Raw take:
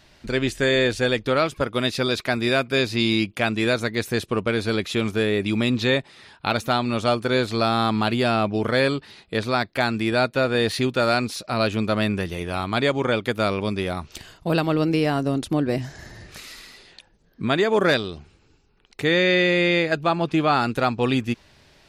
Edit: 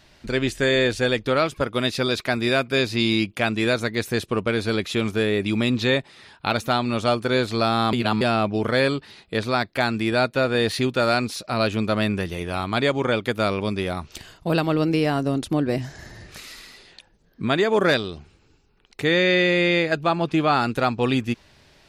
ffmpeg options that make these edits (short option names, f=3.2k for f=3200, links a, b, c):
-filter_complex "[0:a]asplit=3[a][b][c];[a]atrim=end=7.932[d];[b]atrim=start=7.928:end=8.212,asetpts=PTS-STARTPTS,areverse[e];[c]atrim=start=8.208[f];[d][e]acrossfade=d=0.004:c1=hsin:c2=hsin[g];[g][f]acrossfade=d=0.004:c1=hsin:c2=hsin"